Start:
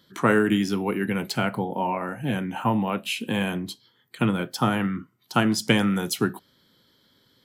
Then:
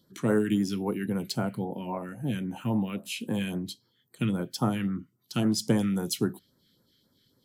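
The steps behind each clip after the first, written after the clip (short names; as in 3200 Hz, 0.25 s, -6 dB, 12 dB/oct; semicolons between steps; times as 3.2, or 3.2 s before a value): phaser stages 2, 3.7 Hz, lowest notch 740–2900 Hz; gain -3.5 dB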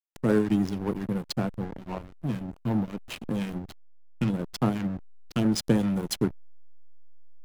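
backlash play -26.5 dBFS; gain +2.5 dB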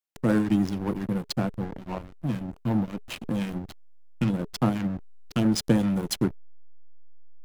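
notch 420 Hz, Q 13; gain +1.5 dB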